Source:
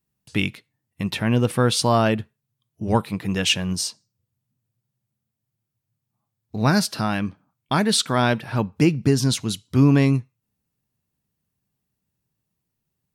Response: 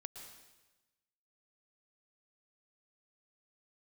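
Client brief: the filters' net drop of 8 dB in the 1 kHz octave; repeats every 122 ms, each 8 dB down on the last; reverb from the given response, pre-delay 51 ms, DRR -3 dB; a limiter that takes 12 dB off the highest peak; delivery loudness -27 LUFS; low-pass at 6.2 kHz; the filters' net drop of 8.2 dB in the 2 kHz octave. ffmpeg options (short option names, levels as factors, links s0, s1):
-filter_complex "[0:a]lowpass=6200,equalizer=f=1000:t=o:g=-9,equalizer=f=2000:t=o:g=-8.5,alimiter=limit=0.126:level=0:latency=1,aecho=1:1:122|244|366|488|610:0.398|0.159|0.0637|0.0255|0.0102,asplit=2[s0][s1];[1:a]atrim=start_sample=2205,adelay=51[s2];[s1][s2]afir=irnorm=-1:irlink=0,volume=2.24[s3];[s0][s3]amix=inputs=2:normalize=0,volume=0.668"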